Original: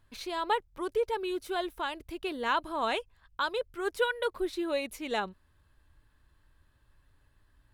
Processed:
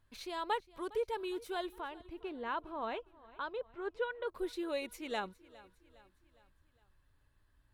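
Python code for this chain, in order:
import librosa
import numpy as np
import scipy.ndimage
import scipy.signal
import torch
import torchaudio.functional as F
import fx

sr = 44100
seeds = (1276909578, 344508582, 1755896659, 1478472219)

y = fx.spacing_loss(x, sr, db_at_10k=28, at=(1.79, 4.27), fade=0.02)
y = fx.echo_feedback(y, sr, ms=409, feedback_pct=50, wet_db=-21)
y = F.gain(torch.from_numpy(y), -6.0).numpy()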